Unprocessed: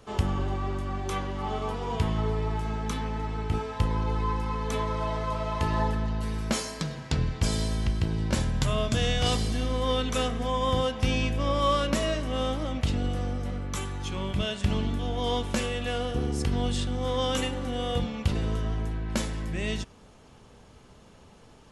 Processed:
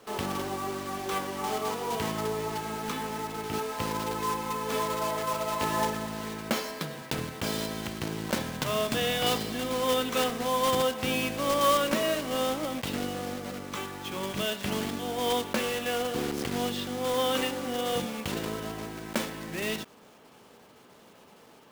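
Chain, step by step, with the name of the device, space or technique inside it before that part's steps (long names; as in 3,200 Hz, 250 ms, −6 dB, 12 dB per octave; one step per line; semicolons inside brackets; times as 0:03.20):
early digital voice recorder (band-pass filter 240–4,000 Hz; one scale factor per block 3 bits)
level +1.5 dB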